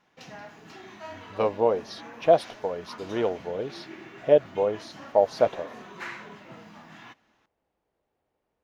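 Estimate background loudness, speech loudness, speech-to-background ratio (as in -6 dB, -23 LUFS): -44.0 LUFS, -25.5 LUFS, 18.5 dB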